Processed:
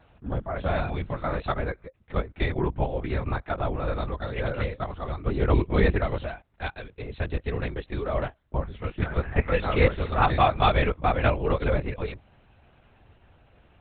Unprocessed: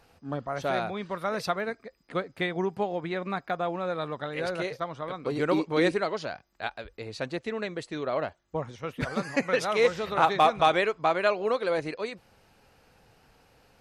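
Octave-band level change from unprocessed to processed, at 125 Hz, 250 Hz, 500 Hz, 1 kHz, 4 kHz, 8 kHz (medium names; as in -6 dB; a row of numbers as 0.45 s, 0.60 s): +12.0 dB, +1.0 dB, -0.5 dB, 0.0 dB, -2.0 dB, under -30 dB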